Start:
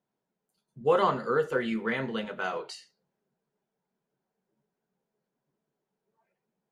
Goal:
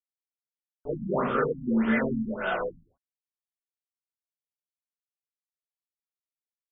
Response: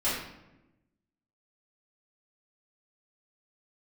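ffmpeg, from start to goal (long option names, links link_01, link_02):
-filter_complex "[0:a]acrusher=bits=5:mix=0:aa=0.000001[link_01];[1:a]atrim=start_sample=2205,afade=type=out:start_time=0.27:duration=0.01,atrim=end_sample=12348[link_02];[link_01][link_02]afir=irnorm=-1:irlink=0,afftfilt=real='re*lt(b*sr/1024,260*pow(3700/260,0.5+0.5*sin(2*PI*1.7*pts/sr)))':imag='im*lt(b*sr/1024,260*pow(3700/260,0.5+0.5*sin(2*PI*1.7*pts/sr)))':win_size=1024:overlap=0.75,volume=-6.5dB"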